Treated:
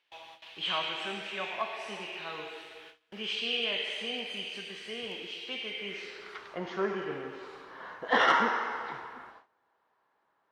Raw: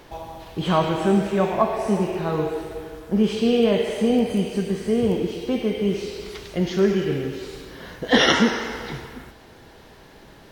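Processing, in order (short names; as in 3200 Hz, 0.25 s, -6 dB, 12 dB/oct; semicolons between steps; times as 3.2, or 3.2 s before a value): band-pass sweep 2800 Hz -> 1100 Hz, 5.69–6.57; gate with hold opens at -43 dBFS; soft clip -16 dBFS, distortion -23 dB; gain +3.5 dB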